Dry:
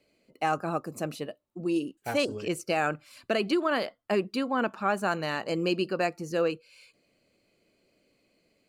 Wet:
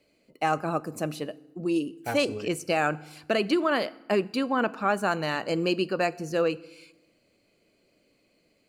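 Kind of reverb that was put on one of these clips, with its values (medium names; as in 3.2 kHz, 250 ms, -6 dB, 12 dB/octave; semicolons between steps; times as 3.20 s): FDN reverb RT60 0.99 s, low-frequency decay 1.4×, high-frequency decay 0.75×, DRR 17.5 dB; trim +2 dB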